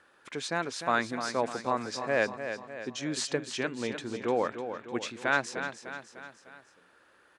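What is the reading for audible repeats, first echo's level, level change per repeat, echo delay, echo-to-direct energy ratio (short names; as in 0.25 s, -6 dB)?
4, -9.0 dB, -5.5 dB, 0.301 s, -7.5 dB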